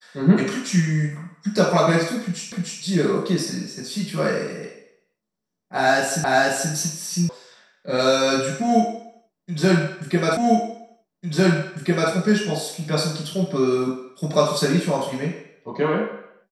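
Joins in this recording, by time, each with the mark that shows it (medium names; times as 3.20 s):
2.52 s: repeat of the last 0.3 s
6.24 s: repeat of the last 0.48 s
7.29 s: sound stops dead
10.37 s: repeat of the last 1.75 s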